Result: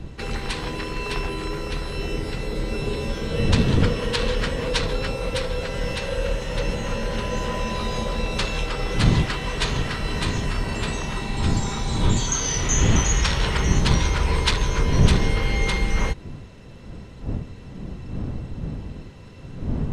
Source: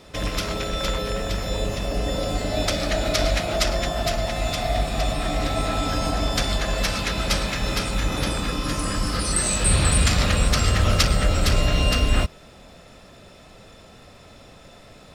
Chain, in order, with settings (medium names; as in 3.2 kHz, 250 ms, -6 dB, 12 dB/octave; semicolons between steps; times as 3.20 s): wind noise 200 Hz -25 dBFS; tape speed -24%; trim -2 dB